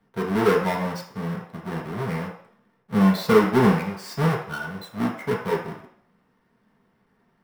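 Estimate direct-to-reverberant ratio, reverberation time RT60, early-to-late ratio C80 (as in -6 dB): -2.0 dB, 0.60 s, 9.5 dB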